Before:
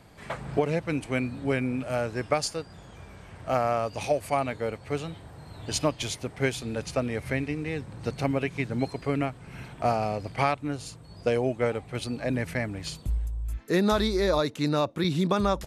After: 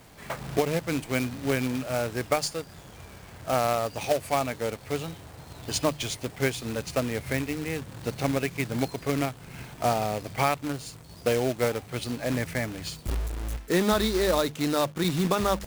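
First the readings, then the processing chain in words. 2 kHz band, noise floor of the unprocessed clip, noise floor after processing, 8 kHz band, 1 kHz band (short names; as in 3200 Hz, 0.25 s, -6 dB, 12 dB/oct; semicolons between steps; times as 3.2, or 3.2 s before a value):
+1.0 dB, -48 dBFS, -47 dBFS, +4.0 dB, +0.5 dB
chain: companded quantiser 4-bit; notches 50/100/150/200 Hz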